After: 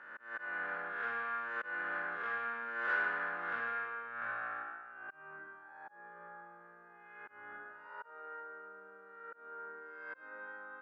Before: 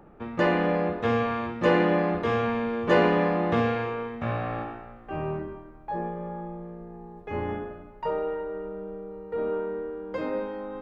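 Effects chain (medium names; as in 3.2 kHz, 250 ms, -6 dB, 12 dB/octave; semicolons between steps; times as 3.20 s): reverse spectral sustain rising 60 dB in 0.81 s; slow attack 358 ms; saturation -21.5 dBFS, distortion -10 dB; band-pass filter 1.5 kHz, Q 9.2; tape noise reduction on one side only encoder only; trim +6.5 dB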